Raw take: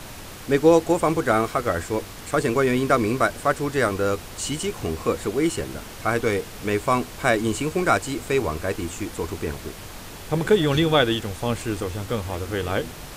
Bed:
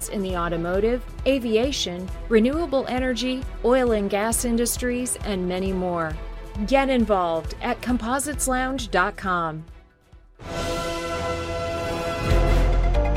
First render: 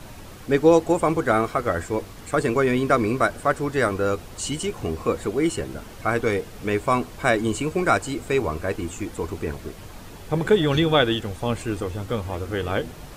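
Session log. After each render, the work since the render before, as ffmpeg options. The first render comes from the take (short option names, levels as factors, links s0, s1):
-af "afftdn=nr=7:nf=-39"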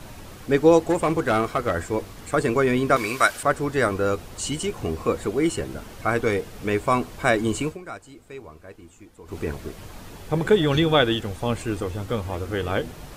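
-filter_complex "[0:a]asettb=1/sr,asplit=3[s0][s1][s2];[s0]atrim=end=0.894[s3];[s1]atrim=start=0.89:end=1.9,asetpts=PTS-STARTPTS,afade=t=in:d=0.004:c=qsin,afade=t=out:st=1.006:d=0.004:c=qsin,volume=5.62,asoftclip=hard,volume=0.178[s4];[s2]atrim=start=1.896[s5];[s3][s4]acrossfade=d=0.004:c1=hsin:c2=qsin[s6];[s6][s5]acrossfade=d=0.004:c1=qsin:c2=hsin,asettb=1/sr,asplit=3[s7][s8][s9];[s7]atrim=end=2.964[s10];[s8]atrim=start=2.96:end=3.43,asetpts=PTS-STARTPTS,afade=t=in:d=0.004:c=qsin,afade=t=out:st=0.466:d=0.004:c=qsin,tiltshelf=f=850:g=-10[s11];[s9]atrim=start=3.426[s12];[s10][s11]acrossfade=d=0.004:c1=hsin:c2=qsin[s13];[s13][s12]acrossfade=d=0.004:c1=qsin:c2=hsin,asplit=3[s14][s15][s16];[s14]atrim=end=7.78,asetpts=PTS-STARTPTS,afade=t=out:st=7.65:d=0.13:silence=0.141254[s17];[s15]atrim=start=7.78:end=9.25,asetpts=PTS-STARTPTS,volume=0.141[s18];[s16]atrim=start=9.25,asetpts=PTS-STARTPTS,afade=t=in:d=0.13:silence=0.141254[s19];[s17][s18][s19]concat=n=3:v=0:a=1"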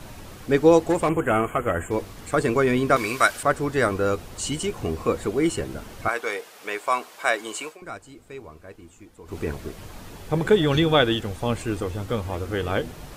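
-filter_complex "[0:a]asettb=1/sr,asplit=3[s0][s1][s2];[s0]atrim=end=1.094[s3];[s1]atrim=start=1.09:end=1.91,asetpts=PTS-STARTPTS,afade=t=in:d=0.004:c=qsin,afade=t=out:st=0.816:d=0.004:c=qsin,asuperstop=centerf=4700:order=12:qfactor=1.3[s4];[s2]atrim=start=1.906[s5];[s3][s4]acrossfade=d=0.004:c1=hsin:c2=qsin[s6];[s6][s5]acrossfade=d=0.004:c1=qsin:c2=hsin,asettb=1/sr,asplit=3[s7][s8][s9];[s7]atrim=end=6.084[s10];[s8]atrim=start=6.08:end=7.82,asetpts=PTS-STARTPTS,afade=t=in:d=0.004:c=qsin,afade=t=out:st=1.736:d=0.004:c=qsin,highpass=660[s11];[s9]atrim=start=7.816[s12];[s10][s11]acrossfade=d=0.004:c1=hsin:c2=qsin[s13];[s13][s12]acrossfade=d=0.004:c1=qsin:c2=hsin"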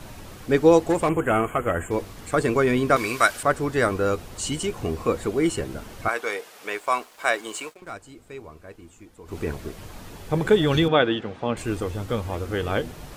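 -filter_complex "[0:a]asettb=1/sr,asplit=3[s0][s1][s2];[s0]atrim=end=6.734[s3];[s1]atrim=start=6.73:end=7.93,asetpts=PTS-STARTPTS,afade=t=in:d=0.004:c=qsin,afade=t=out:st=1.196:d=0.004:c=qsin,aeval=exprs='sgn(val(0))*max(abs(val(0))-0.00282,0)':c=same[s4];[s2]atrim=start=7.926[s5];[s3][s4]acrossfade=d=0.004:c1=hsin:c2=qsin[s6];[s6][s5]acrossfade=d=0.004:c1=qsin:c2=hsin,asettb=1/sr,asplit=3[s7][s8][s9];[s7]atrim=end=10.884[s10];[s8]atrim=start=10.88:end=11.57,asetpts=PTS-STARTPTS,afade=t=in:d=0.004:c=qsin,afade=t=out:st=0.686:d=0.004:c=qsin,highpass=160,lowpass=3000[s11];[s9]atrim=start=11.566[s12];[s10][s11]acrossfade=d=0.004:c1=hsin:c2=qsin[s13];[s13][s12]acrossfade=d=0.004:c1=qsin:c2=hsin"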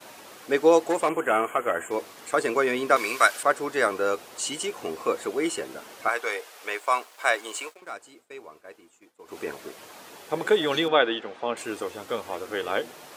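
-af "highpass=420,agate=range=0.0224:threshold=0.00398:ratio=3:detection=peak"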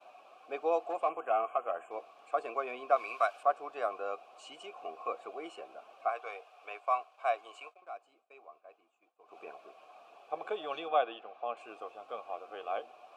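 -filter_complex "[0:a]asplit=3[s0][s1][s2];[s0]bandpass=f=730:t=q:w=8,volume=1[s3];[s1]bandpass=f=1090:t=q:w=8,volume=0.501[s4];[s2]bandpass=f=2440:t=q:w=8,volume=0.355[s5];[s3][s4][s5]amix=inputs=3:normalize=0"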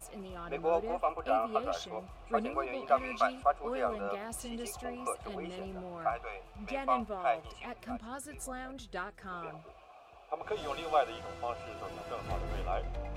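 -filter_complex "[1:a]volume=0.112[s0];[0:a][s0]amix=inputs=2:normalize=0"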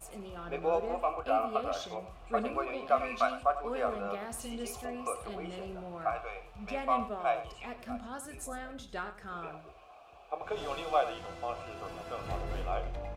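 -filter_complex "[0:a]asplit=2[s0][s1];[s1]adelay=29,volume=0.266[s2];[s0][s2]amix=inputs=2:normalize=0,aecho=1:1:94:0.237"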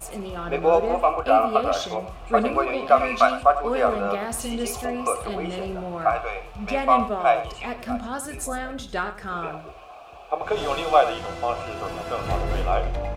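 -af "volume=3.76,alimiter=limit=0.708:level=0:latency=1"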